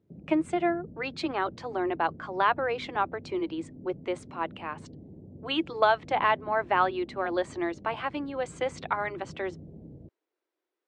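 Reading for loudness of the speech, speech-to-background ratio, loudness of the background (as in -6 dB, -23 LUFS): -30.0 LUFS, 17.5 dB, -47.5 LUFS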